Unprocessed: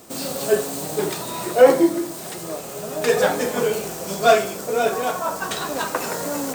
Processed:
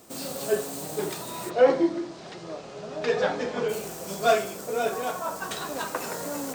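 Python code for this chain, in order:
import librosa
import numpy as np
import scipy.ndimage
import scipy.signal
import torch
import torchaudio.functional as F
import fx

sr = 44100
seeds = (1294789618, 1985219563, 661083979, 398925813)

y = fx.lowpass(x, sr, hz=5300.0, slope=24, at=(1.49, 3.68), fade=0.02)
y = y * 10.0 ** (-6.5 / 20.0)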